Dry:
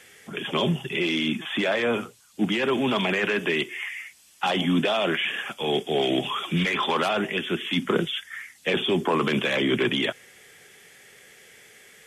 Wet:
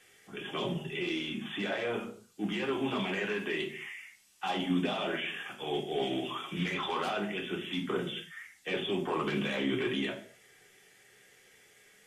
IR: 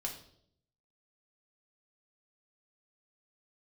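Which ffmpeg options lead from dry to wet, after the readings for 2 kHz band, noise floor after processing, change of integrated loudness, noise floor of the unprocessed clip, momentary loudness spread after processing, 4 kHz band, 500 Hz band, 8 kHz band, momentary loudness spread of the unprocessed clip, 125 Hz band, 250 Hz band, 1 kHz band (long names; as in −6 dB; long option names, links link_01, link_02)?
−9.5 dB, −61 dBFS, −9.0 dB, −55 dBFS, 10 LU, −10.0 dB, −8.5 dB, −9.0 dB, 8 LU, −9.0 dB, −8.0 dB, −8.5 dB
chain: -filter_complex "[1:a]atrim=start_sample=2205,afade=type=out:start_time=0.39:duration=0.01,atrim=end_sample=17640,asetrate=57330,aresample=44100[link_01];[0:a][link_01]afir=irnorm=-1:irlink=0,volume=-7dB"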